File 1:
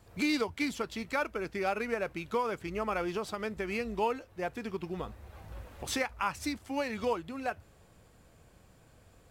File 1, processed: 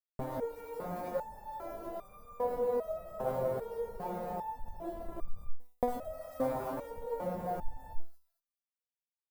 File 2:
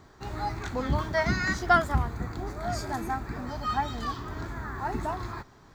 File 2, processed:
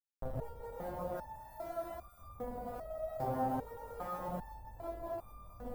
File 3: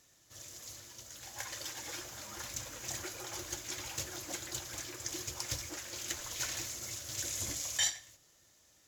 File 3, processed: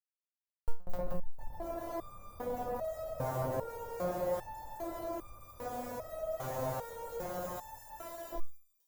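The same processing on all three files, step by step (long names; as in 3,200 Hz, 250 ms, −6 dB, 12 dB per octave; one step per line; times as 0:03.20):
downward expander −48 dBFS
high-shelf EQ 3,700 Hz +9 dB
reverb whose tail is shaped and stops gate 470 ms rising, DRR −4 dB
comparator with hysteresis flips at −29 dBFS
compressor whose output falls as the input rises −36 dBFS, ratio −0.5
drawn EQ curve 100 Hz 0 dB, 380 Hz −5 dB, 560 Hz +9 dB, 2,700 Hz −21 dB, 6,600 Hz −21 dB, 14,000 Hz −7 dB
delay with a high-pass on its return 220 ms, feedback 33%, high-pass 4,700 Hz, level −8 dB
step-sequenced resonator 2.5 Hz 130–1,200 Hz
level +16.5 dB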